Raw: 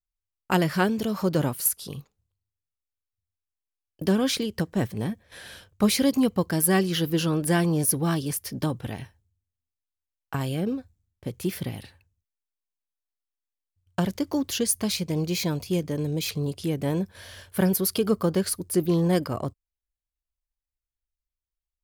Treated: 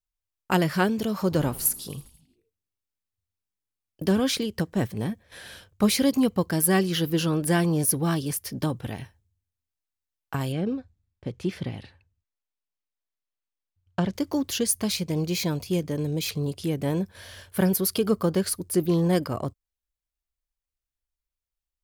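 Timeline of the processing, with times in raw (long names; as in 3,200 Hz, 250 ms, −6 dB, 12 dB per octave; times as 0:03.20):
0:01.20–0:04.20: echo with shifted repeats 81 ms, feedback 62%, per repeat −98 Hz, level −19 dB
0:10.52–0:14.14: high-frequency loss of the air 96 metres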